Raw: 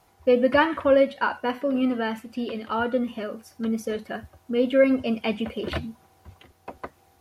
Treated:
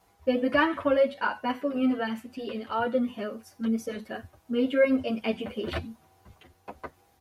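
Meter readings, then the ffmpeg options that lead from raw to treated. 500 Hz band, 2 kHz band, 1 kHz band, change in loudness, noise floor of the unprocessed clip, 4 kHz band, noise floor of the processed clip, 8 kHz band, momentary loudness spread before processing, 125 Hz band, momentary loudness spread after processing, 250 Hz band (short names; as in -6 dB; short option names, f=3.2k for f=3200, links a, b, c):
-4.5 dB, -2.5 dB, -3.0 dB, -3.5 dB, -61 dBFS, -3.0 dB, -64 dBFS, -3.0 dB, 17 LU, -3.5 dB, 17 LU, -2.5 dB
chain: -filter_complex "[0:a]asplit=2[a][b];[b]adelay=8.6,afreqshift=2.6[c];[a][c]amix=inputs=2:normalize=1"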